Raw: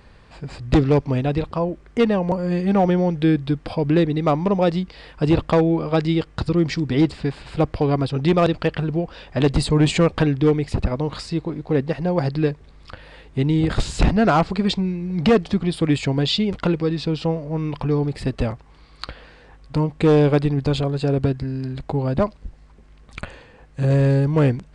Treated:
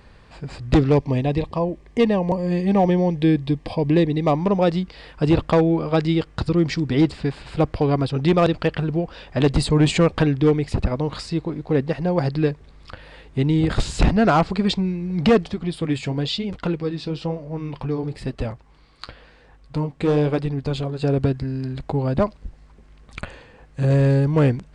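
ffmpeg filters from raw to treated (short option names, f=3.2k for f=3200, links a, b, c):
-filter_complex "[0:a]asettb=1/sr,asplit=3[a][b][c];[a]atrim=end=0.954[d];[b]atrim=start=0.95:end=4.37,asetpts=PTS-STARTPTS,afade=t=in:d=0.004:c=qsin,afade=t=out:st=3.416:d=0.004:c=qsin,asuperstop=centerf=1400:order=4:qfactor=3.2[e];[c]atrim=start=4.366[f];[d][e]acrossfade=d=0.004:c1=hsin:c2=qsin[g];[g][f]acrossfade=d=0.004:c1=qsin:c2=hsin,asettb=1/sr,asplit=3[h][i][j];[h]atrim=end=15.494[k];[i]atrim=start=15.49:end=21.02,asetpts=PTS-STARTPTS,afade=t=in:d=0.004:c=qsin,afade=t=out:st=5.526:d=0.004:c=qsin,flanger=delay=1.1:depth=9.7:regen=-62:speed=1:shape=triangular[l];[j]atrim=start=21.016[m];[k][l]acrossfade=d=0.004:c1=hsin:c2=qsin[n];[n][m]acrossfade=d=0.004:c1=qsin:c2=hsin"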